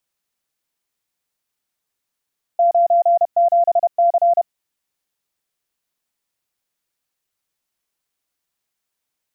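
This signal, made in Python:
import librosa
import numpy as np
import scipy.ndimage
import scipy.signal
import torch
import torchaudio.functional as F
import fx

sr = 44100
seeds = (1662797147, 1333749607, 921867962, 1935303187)

y = fx.morse(sr, text='97C', wpm=31, hz=688.0, level_db=-10.5)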